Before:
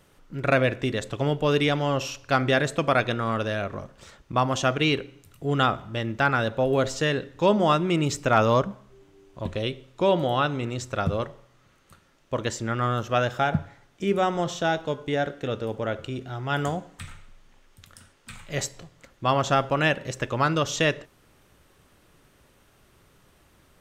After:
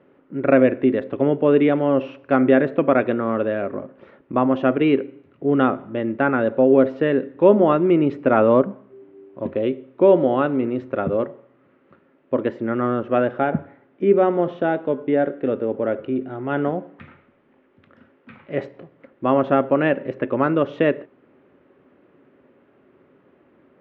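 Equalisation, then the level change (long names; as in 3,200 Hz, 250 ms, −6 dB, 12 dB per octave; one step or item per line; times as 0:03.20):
loudspeaker in its box 250–2,400 Hz, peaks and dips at 260 Hz +9 dB, 380 Hz +7 dB, 550 Hz +6 dB
low-shelf EQ 320 Hz +10.5 dB
−1.0 dB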